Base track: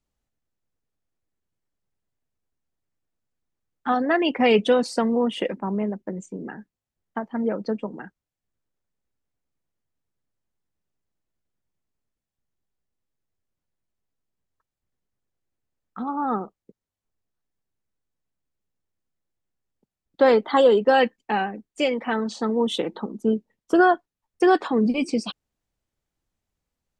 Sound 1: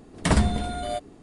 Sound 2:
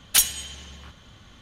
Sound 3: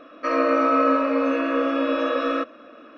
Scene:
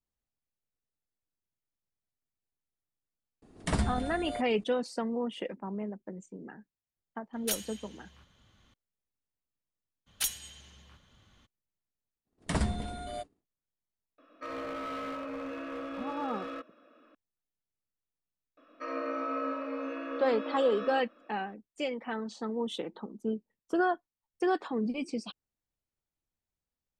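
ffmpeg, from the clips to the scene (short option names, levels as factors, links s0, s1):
-filter_complex "[1:a]asplit=2[s0][s1];[2:a]asplit=2[s2][s3];[3:a]asplit=2[s4][s5];[0:a]volume=0.282[s6];[s1]agate=range=0.0224:threshold=0.0158:ratio=3:release=100:detection=peak[s7];[s4]asoftclip=type=hard:threshold=0.106[s8];[s0]atrim=end=1.22,asetpts=PTS-STARTPTS,volume=0.355,afade=t=in:d=0.004:c=hsin,afade=t=out:st=1.216:d=0.004:c=hsin,adelay=3420[s9];[s2]atrim=end=1.41,asetpts=PTS-STARTPTS,volume=0.188,afade=t=in:d=0.004:c=hsin,afade=t=out:st=1.406:d=0.004:c=hsin,adelay=7330[s10];[s3]atrim=end=1.41,asetpts=PTS-STARTPTS,volume=0.224,afade=t=in:d=0.02,afade=t=out:st=1.39:d=0.02,adelay=10060[s11];[s7]atrim=end=1.22,asetpts=PTS-STARTPTS,volume=0.335,afade=t=in:d=0.05,afade=t=out:st=1.17:d=0.05,adelay=12240[s12];[s8]atrim=end=2.97,asetpts=PTS-STARTPTS,volume=0.168,afade=t=in:d=0.004:c=hsin,afade=t=out:st=2.966:d=0.004:c=hsin,adelay=14180[s13];[s5]atrim=end=2.97,asetpts=PTS-STARTPTS,volume=0.178,afade=t=in:d=0.004:c=hsin,afade=t=out:st=2.966:d=0.004:c=hsin,adelay=18570[s14];[s6][s9][s10][s11][s12][s13][s14]amix=inputs=7:normalize=0"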